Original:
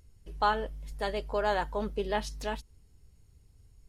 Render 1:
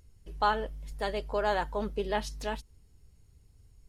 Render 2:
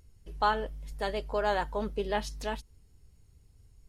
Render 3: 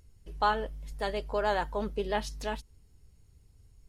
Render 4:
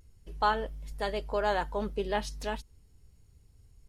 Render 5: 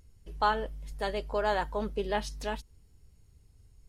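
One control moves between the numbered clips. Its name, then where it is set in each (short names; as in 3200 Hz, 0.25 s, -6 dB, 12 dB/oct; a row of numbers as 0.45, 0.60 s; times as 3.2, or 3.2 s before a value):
vibrato, rate: 16, 4.5, 11, 0.38, 0.77 Hz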